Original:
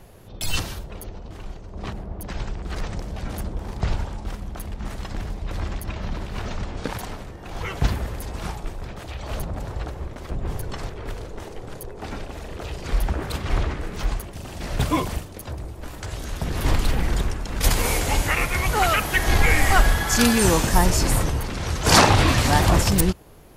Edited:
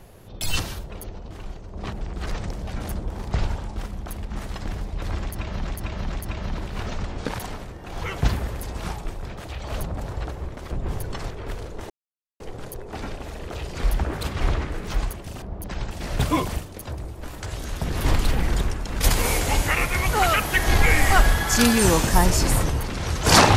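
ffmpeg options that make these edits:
-filter_complex "[0:a]asplit=7[s0][s1][s2][s3][s4][s5][s6];[s0]atrim=end=2.012[s7];[s1]atrim=start=2.498:end=6.162[s8];[s2]atrim=start=5.708:end=6.162[s9];[s3]atrim=start=5.708:end=11.49,asetpts=PTS-STARTPTS,afade=t=out:st=5.778:d=0.004:c=hsin,apad=pad_dur=0.5[s10];[s4]atrim=start=11.49:end=14.512,asetpts=PTS-STARTPTS,afade=t=in:d=0.004:c=hsin[s11];[s5]atrim=start=2.008:end=2.502[s12];[s6]atrim=start=14.508[s13];[s7][s8]acrossfade=d=0.004:c1=hsin:c2=hsin[s14];[s14][s9]acrossfade=d=0.004:c1=hsin:c2=hsin[s15];[s10][s11]concat=n=2:v=0:a=1[s16];[s15][s16]acrossfade=d=0.004:c1=hsin:c2=hsin[s17];[s17][s12]acrossfade=d=0.004:c1=hsin:c2=hsin[s18];[s18][s13]acrossfade=d=0.004:c1=hsin:c2=hsin"

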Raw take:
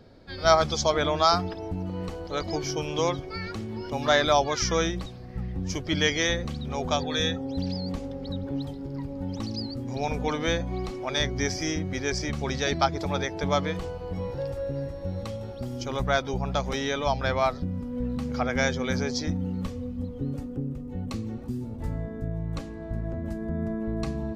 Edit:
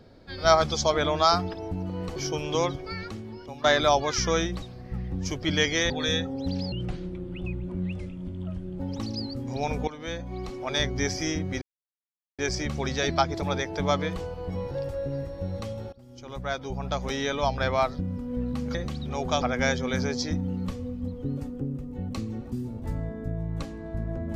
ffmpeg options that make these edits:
-filter_complex "[0:a]asplit=11[s0][s1][s2][s3][s4][s5][s6][s7][s8][s9][s10];[s0]atrim=end=2.162[s11];[s1]atrim=start=2.598:end=4.08,asetpts=PTS-STARTPTS,afade=t=out:st=0.712:d=0.77:silence=0.199526[s12];[s2]atrim=start=4.08:end=6.342,asetpts=PTS-STARTPTS,afade=t=in:d=0.004:c=hsin:silence=0.199526[s13];[s3]atrim=start=7.008:end=7.834[s14];[s4]atrim=start=7.83:end=9.2,asetpts=PTS-STARTPTS,asetrate=29106,aresample=44100[s15];[s5]atrim=start=9.196:end=10.28,asetpts=PTS-STARTPTS,afade=t=out:st=1.08:d=0.004:c=hsin:silence=0.177828[s16];[s6]atrim=start=10.28:end=12.02,asetpts=PTS-STARTPTS,afade=t=in:d=0.87:silence=0.177828,afade=t=out:st=1.736:d=0.004:c=hsin,apad=pad_dur=0.77[s17];[s7]atrim=start=12.02:end=15.56,asetpts=PTS-STARTPTS,afade=t=in:d=0.004:c=hsin,afade=t=out:st=3.536:d=0.004:c=hsin:silence=0.0707946[s18];[s8]atrim=start=15.56:end=18.382,asetpts=PTS-STARTPTS,afade=t=in:d=1.33:silence=0.0707946[s19];[s9]atrim=start=6.338:end=7.012[s20];[s10]atrim=start=18.378[s21];[s12][s13]concat=n=2:v=0:a=1[s22];[s11][s22]acrossfade=d=0.004:c1=hsin:c2=hsin[s23];[s23][s14]acrossfade=d=0.004:c1=hsin:c2=hsin[s24];[s24][s15]acrossfade=d=0.004:c1=hsin:c2=hsin[s25];[s16][s17][s18][s19]concat=n=4:v=0:a=1[s26];[s25][s26]acrossfade=d=0.004:c1=hsin:c2=hsin[s27];[s27][s20]acrossfade=d=0.004:c1=hsin:c2=hsin[s28];[s28][s21]acrossfade=d=0.004:c1=hsin:c2=hsin"

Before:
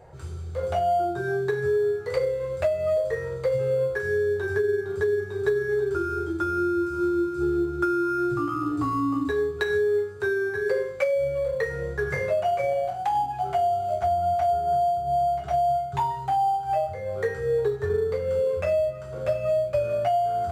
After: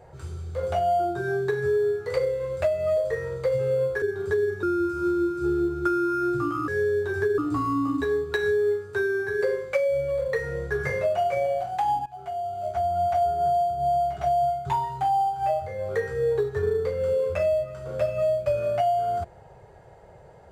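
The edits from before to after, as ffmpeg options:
-filter_complex "[0:a]asplit=6[s0][s1][s2][s3][s4][s5];[s0]atrim=end=4.022[s6];[s1]atrim=start=4.718:end=5.332[s7];[s2]atrim=start=6.598:end=8.652[s8];[s3]atrim=start=4.018:end=4.722[s9];[s4]atrim=start=8.648:end=13.33,asetpts=PTS-STARTPTS,afade=t=out:st=4.678:d=0.004:c=hsin:silence=0.141254[s10];[s5]atrim=start=13.33,asetpts=PTS-STARTPTS,afade=t=in:d=1:silence=0.141254[s11];[s6][s7]acrossfade=d=0.004:c1=hsin:c2=hsin[s12];[s12][s8]acrossfade=d=0.004:c1=hsin:c2=hsin[s13];[s13][s9]acrossfade=d=0.004:c1=hsin:c2=hsin[s14];[s10][s11]concat=n=2:v=0:a=1[s15];[s14][s15]acrossfade=d=0.004:c1=hsin:c2=hsin"

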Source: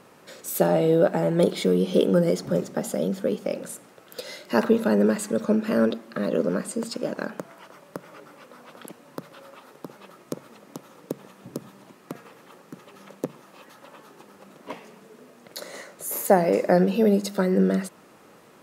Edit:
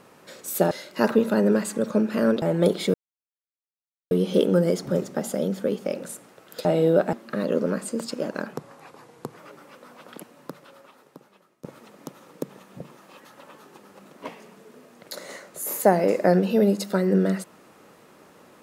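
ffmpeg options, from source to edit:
-filter_complex "[0:a]asplit=10[s0][s1][s2][s3][s4][s5][s6][s7][s8][s9];[s0]atrim=end=0.712[s10];[s1]atrim=start=4.248:end=5.962[s11];[s2]atrim=start=1.188:end=1.71,asetpts=PTS-STARTPTS,afade=t=out:st=0.518:d=0.004:c=hsin,apad=pad_dur=1.17[s12];[s3]atrim=start=1.71:end=4.252,asetpts=PTS-STARTPTS,afade=t=in:d=0.004:c=hsin[s13];[s4]atrim=start=0.708:end=1.192[s14];[s5]atrim=start=5.958:end=7.364[s15];[s6]atrim=start=7.36:end=8.06,asetpts=PTS-STARTPTS,asetrate=36603,aresample=44100[s16];[s7]atrim=start=8.056:end=10.33,asetpts=PTS-STARTPTS,afade=t=out:st=0.834:d=1.44:silence=0.0944061[s17];[s8]atrim=start=10.33:end=11.492,asetpts=PTS-STARTPTS,afade=t=in:d=0.004:c=hsin:silence=0.0944061[s18];[s9]atrim=start=13.248[s19];[s10][s11]acrossfade=d=0.004:c1=hsin:c2=hsin[s20];[s12][s13]concat=n=2:v=0:a=1[s21];[s20][s21]acrossfade=d=0.004:c1=hsin:c2=hsin[s22];[s22][s14]acrossfade=d=0.004:c1=hsin:c2=hsin[s23];[s23][s15]acrossfade=d=0.004:c1=hsin:c2=hsin[s24];[s24][s16]acrossfade=d=0.004:c1=hsin:c2=hsin[s25];[s17][s18]concat=n=2:v=0:a=1[s26];[s25][s26]acrossfade=d=0.004:c1=hsin:c2=hsin[s27];[s27][s19]acrossfade=d=0.004:c1=hsin:c2=hsin"

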